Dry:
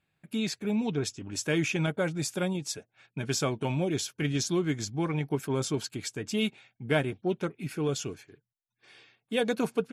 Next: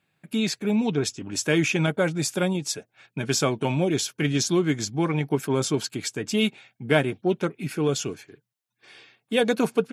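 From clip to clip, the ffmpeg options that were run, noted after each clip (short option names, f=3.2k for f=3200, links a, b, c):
-af "highpass=120,volume=6dB"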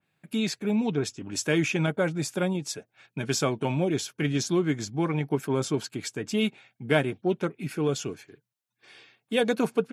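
-af "adynamicequalizer=threshold=0.00891:dfrequency=2500:dqfactor=0.7:tfrequency=2500:tqfactor=0.7:attack=5:release=100:ratio=0.375:range=2.5:mode=cutabove:tftype=highshelf,volume=-2.5dB"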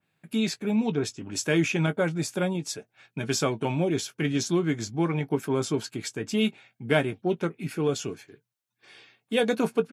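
-filter_complex "[0:a]asplit=2[a][b];[b]adelay=18,volume=-12dB[c];[a][c]amix=inputs=2:normalize=0"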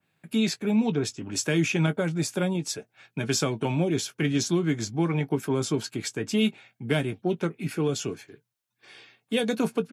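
-filter_complex "[0:a]acrossover=split=280|3000[a][b][c];[b]acompressor=threshold=-28dB:ratio=6[d];[a][d][c]amix=inputs=3:normalize=0,volume=2dB"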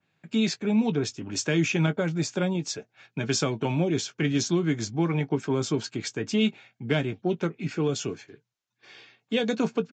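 -af "aresample=16000,aresample=44100"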